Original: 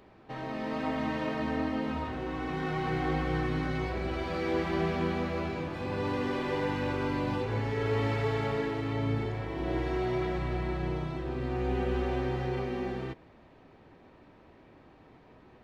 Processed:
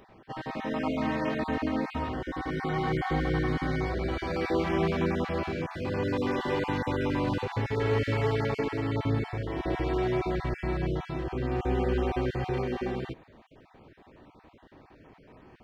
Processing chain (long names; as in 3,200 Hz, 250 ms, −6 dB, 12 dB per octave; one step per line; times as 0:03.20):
time-frequency cells dropped at random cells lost 23%
0:02.17–0:04.36: notch filter 2,600 Hz, Q 8.8
level +3 dB